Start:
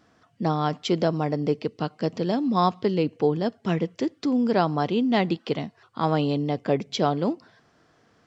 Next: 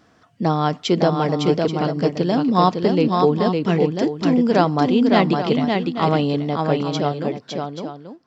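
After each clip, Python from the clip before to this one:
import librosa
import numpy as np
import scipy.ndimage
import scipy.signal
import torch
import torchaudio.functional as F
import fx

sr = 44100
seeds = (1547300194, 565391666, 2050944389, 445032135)

y = fx.fade_out_tail(x, sr, length_s=2.29)
y = fx.echo_multitap(y, sr, ms=(558, 832), db=(-4.0, -11.0))
y = F.gain(torch.from_numpy(y), 5.0).numpy()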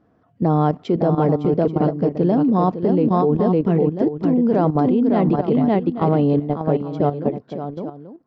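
y = fx.curve_eq(x, sr, hz=(440.0, 730.0, 5900.0), db=(0, -3, -23))
y = fx.level_steps(y, sr, step_db=11)
y = F.gain(torch.from_numpy(y), 6.0).numpy()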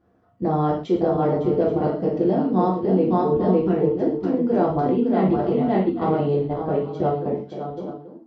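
y = fx.rev_gated(x, sr, seeds[0], gate_ms=160, shape='falling', drr_db=-3.5)
y = F.gain(torch.from_numpy(y), -7.0).numpy()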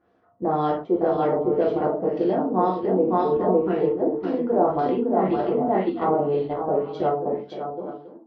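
y = fx.bass_treble(x, sr, bass_db=-10, treble_db=8)
y = fx.filter_lfo_lowpass(y, sr, shape='sine', hz=1.9, low_hz=850.0, high_hz=3800.0, q=1.3)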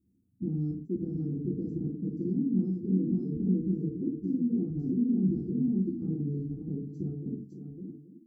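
y = scipy.signal.sosfilt(scipy.signal.cheby2(4, 50, [570.0, 3700.0], 'bandstop', fs=sr, output='sos'), x)
y = F.gain(torch.from_numpy(y), 2.5).numpy()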